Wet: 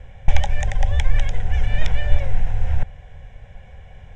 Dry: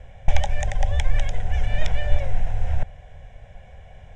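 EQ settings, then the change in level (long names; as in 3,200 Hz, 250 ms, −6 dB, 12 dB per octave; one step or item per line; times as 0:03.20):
parametric band 650 Hz −8 dB 0.36 octaves
high-shelf EQ 5,800 Hz −5.5 dB
+3.0 dB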